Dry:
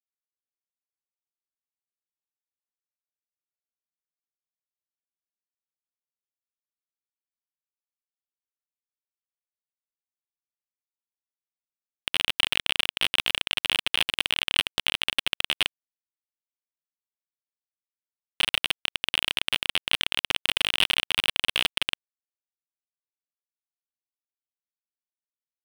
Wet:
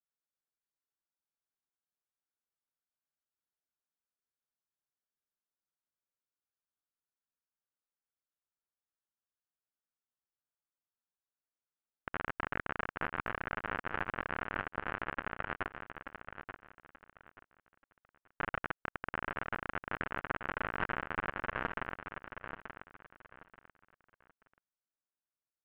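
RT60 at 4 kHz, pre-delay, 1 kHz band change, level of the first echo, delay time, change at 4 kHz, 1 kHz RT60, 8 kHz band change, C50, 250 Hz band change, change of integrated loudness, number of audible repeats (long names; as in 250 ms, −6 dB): no reverb audible, no reverb audible, +0.5 dB, −8.5 dB, 882 ms, −31.0 dB, no reverb audible, below −40 dB, no reverb audible, −0.5 dB, −14.0 dB, 3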